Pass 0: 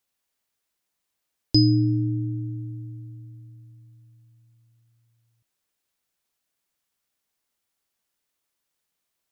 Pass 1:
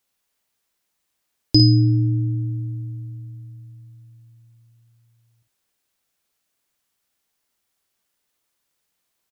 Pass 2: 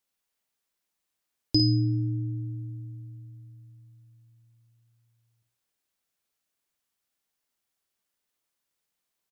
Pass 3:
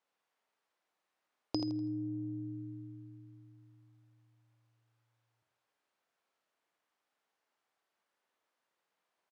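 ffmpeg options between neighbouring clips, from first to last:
-af "aecho=1:1:31|51:0.133|0.447,volume=4dB"
-af "bandreject=f=60:t=h:w=6,bandreject=f=120:t=h:w=6,volume=-7.5dB"
-af "acompressor=threshold=-31dB:ratio=6,bandpass=f=830:t=q:w=0.73:csg=0,aecho=1:1:82|164|246|328:0.447|0.152|0.0516|0.0176,volume=7dB"

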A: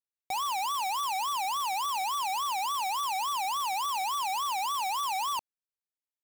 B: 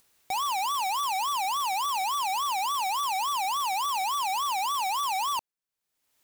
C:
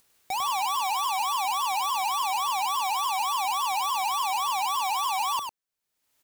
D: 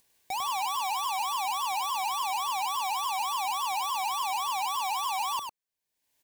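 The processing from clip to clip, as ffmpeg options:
-af "acompressor=mode=upward:threshold=-47dB:ratio=2.5,volume=2.5dB"
-af "aecho=1:1:100:0.531"
-af "asuperstop=centerf=1300:order=4:qfactor=4.9,volume=-3dB"

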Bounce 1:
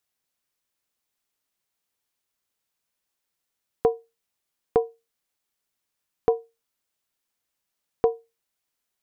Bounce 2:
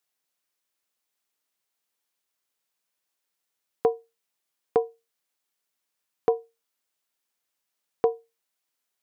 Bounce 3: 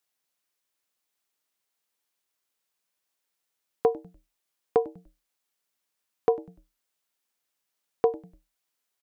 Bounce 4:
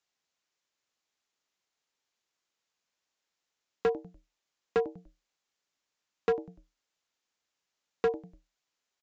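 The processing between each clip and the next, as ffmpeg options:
-af "highpass=f=270:p=1"
-filter_complex "[0:a]asplit=4[a][b][c][d];[b]adelay=98,afreqshift=-140,volume=-21dB[e];[c]adelay=196,afreqshift=-280,volume=-28.5dB[f];[d]adelay=294,afreqshift=-420,volume=-36.1dB[g];[a][e][f][g]amix=inputs=4:normalize=0"
-af "asoftclip=type=hard:threshold=-21.5dB,aresample=16000,aresample=44100"

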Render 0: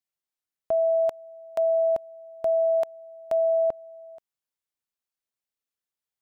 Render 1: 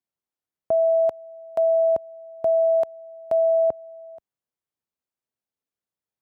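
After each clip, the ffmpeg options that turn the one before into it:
-af "highpass=63,tiltshelf=f=1.2k:g=6"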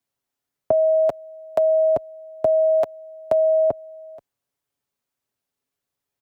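-af "aecho=1:1:6.9:0.48,afreqshift=-20,volume=7dB"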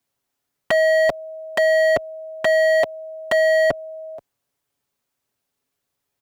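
-af "aeval=exprs='0.133*(abs(mod(val(0)/0.133+3,4)-2)-1)':c=same,volume=5.5dB"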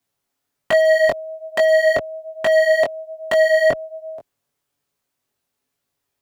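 -af "flanger=delay=18.5:depth=3.8:speed=1.2,volume=4dB"

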